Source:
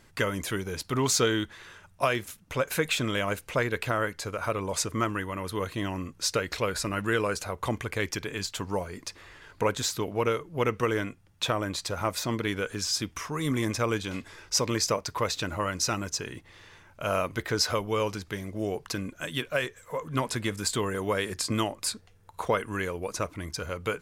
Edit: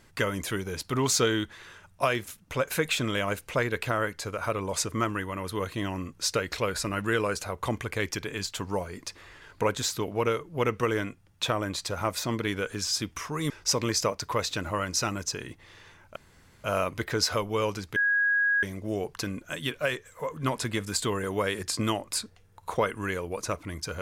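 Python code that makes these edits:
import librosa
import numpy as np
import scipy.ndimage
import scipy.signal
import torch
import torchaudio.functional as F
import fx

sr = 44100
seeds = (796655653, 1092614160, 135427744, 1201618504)

y = fx.edit(x, sr, fx.cut(start_s=13.5, length_s=0.86),
    fx.insert_room_tone(at_s=17.02, length_s=0.48),
    fx.insert_tone(at_s=18.34, length_s=0.67, hz=1650.0, db=-21.0), tone=tone)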